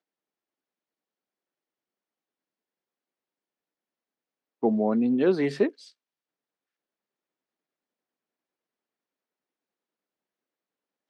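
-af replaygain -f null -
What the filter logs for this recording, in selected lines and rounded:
track_gain = +9.0 dB
track_peak = 0.207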